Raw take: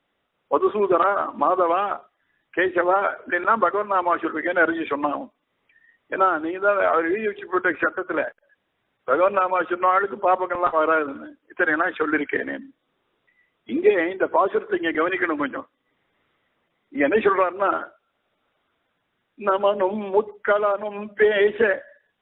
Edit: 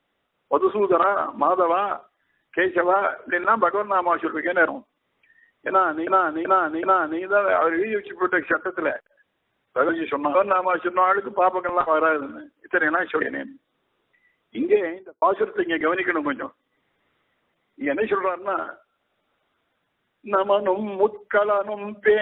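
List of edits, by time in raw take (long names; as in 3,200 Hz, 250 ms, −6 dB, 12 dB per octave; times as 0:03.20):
0:04.68–0:05.14: move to 0:09.21
0:06.15–0:06.53: repeat, 4 plays
0:12.07–0:12.35: remove
0:13.71–0:14.36: fade out and dull
0:16.99–0:17.83: clip gain −4 dB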